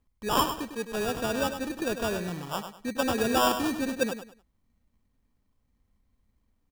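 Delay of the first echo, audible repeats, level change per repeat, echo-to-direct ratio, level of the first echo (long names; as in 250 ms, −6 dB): 101 ms, 3, −11.0 dB, −8.5 dB, −9.0 dB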